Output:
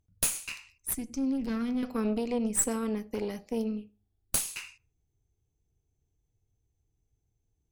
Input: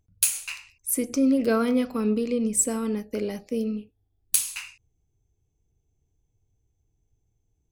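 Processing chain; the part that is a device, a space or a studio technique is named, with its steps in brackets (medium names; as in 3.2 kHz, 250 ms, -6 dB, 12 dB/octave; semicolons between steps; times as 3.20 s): rockabilly slapback (valve stage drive 18 dB, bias 0.75; tape echo 80 ms, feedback 28%, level -23 dB, low-pass 2 kHz); 0.93–1.83 s: FFT filter 210 Hz 0 dB, 470 Hz -14 dB, 6.2 kHz -5 dB, 14 kHz -13 dB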